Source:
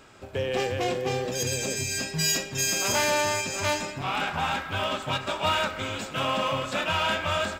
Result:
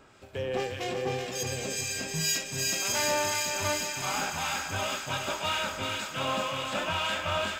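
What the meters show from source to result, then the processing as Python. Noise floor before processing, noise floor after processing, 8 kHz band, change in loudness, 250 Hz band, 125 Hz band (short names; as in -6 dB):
-40 dBFS, -40 dBFS, -1.5 dB, -3.0 dB, -4.5 dB, -4.5 dB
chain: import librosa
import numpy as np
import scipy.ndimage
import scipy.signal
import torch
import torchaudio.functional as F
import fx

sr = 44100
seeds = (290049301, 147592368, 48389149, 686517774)

p1 = fx.harmonic_tremolo(x, sr, hz=1.9, depth_pct=50, crossover_hz=1700.0)
p2 = p1 + fx.echo_thinned(p1, sr, ms=378, feedback_pct=79, hz=1000.0, wet_db=-4.0, dry=0)
y = F.gain(torch.from_numpy(p2), -2.5).numpy()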